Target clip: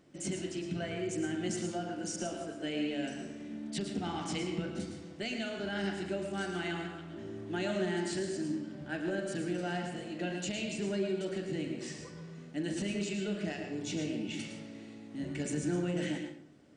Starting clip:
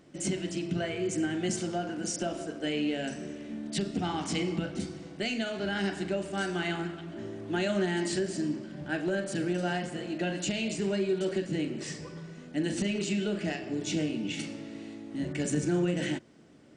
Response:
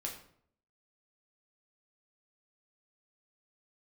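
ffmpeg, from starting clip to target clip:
-filter_complex "[0:a]asplit=2[link_01][link_02];[1:a]atrim=start_sample=2205,adelay=110[link_03];[link_02][link_03]afir=irnorm=-1:irlink=0,volume=-5.5dB[link_04];[link_01][link_04]amix=inputs=2:normalize=0,volume=-5.5dB"

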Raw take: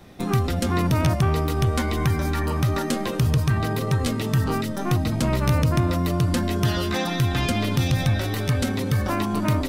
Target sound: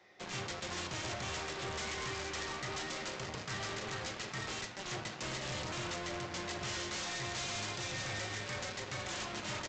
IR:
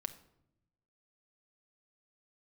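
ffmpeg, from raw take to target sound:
-filter_complex "[0:a]equalizer=frequency=160:width_type=o:width=0.33:gain=-12,equalizer=frequency=250:width_type=o:width=0.33:gain=-11,equalizer=frequency=2000:width_type=o:width=0.33:gain=11,equalizer=frequency=5000:width_type=o:width=0.33:gain=4,acrossover=split=240[link_01][link_02];[link_02]aeval=exprs='(mod(11.2*val(0)+1,2)-1)/11.2':channel_layout=same[link_03];[link_01][link_03]amix=inputs=2:normalize=0,bass=frequency=250:gain=-12,treble=frequency=4000:gain=-1,aeval=exprs='0.141*(cos(1*acos(clip(val(0)/0.141,-1,1)))-cos(1*PI/2))+0.0282*(cos(7*acos(clip(val(0)/0.141,-1,1)))-cos(7*PI/2))':channel_layout=same,highpass=89[link_04];[1:a]atrim=start_sample=2205[link_05];[link_04][link_05]afir=irnorm=-1:irlink=0,aresample=16000,volume=33.5dB,asoftclip=hard,volume=-33.5dB,aresample=44100,volume=-3dB"

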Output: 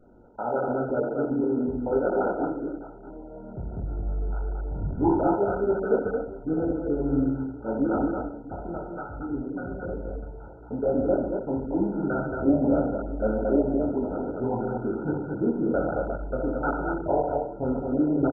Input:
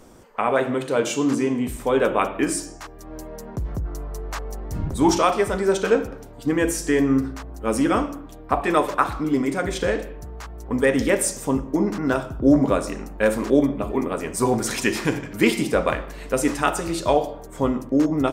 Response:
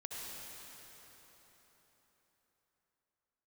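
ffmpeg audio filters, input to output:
-filter_complex "[0:a]asettb=1/sr,asplit=3[link_01][link_02][link_03];[link_01]atrim=end=8.124[link_04];[link_02]atrim=start=8.12:end=10.16,asetpts=PTS-STARTPTS,afade=type=in:duration=0.004:curve=qsin,afade=type=out:start_time=2.036:duration=0.004:curve=qsin,acrossover=split=180|3000[link_05][link_06][link_07];[link_06]acompressor=threshold=-28dB:ratio=5[link_08];[link_05][link_08][link_07]amix=inputs=3:normalize=0[link_09];[link_03]atrim=start=10.156[link_10];[link_04][link_09]acrossfade=duration=0.004:curve1=hsin:curve2=qsin[link_11];[link_11][link_10]acrossfade=duration=0.004:curve1=qsin:curve2=hsin,flanger=delay=20:depth=5.2:speed=1,asuperstop=centerf=1100:order=12:qfactor=3,aecho=1:1:60|106|143|224|307|646:0.447|0.211|0.251|0.668|0.126|0.141,volume=-3.5dB" -ar 16000 -c:a mp2 -b:a 8k

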